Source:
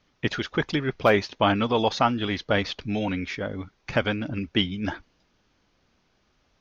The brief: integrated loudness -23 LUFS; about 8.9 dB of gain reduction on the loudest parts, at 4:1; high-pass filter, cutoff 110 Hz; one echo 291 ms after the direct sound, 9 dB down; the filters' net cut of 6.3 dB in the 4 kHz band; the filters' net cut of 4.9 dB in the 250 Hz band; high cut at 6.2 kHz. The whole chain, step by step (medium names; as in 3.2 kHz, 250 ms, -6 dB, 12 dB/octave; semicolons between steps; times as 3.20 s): high-pass 110 Hz; low-pass 6.2 kHz; peaking EQ 250 Hz -6 dB; peaking EQ 4 kHz -8.5 dB; compression 4:1, threshold -26 dBFS; delay 291 ms -9 dB; trim +9.5 dB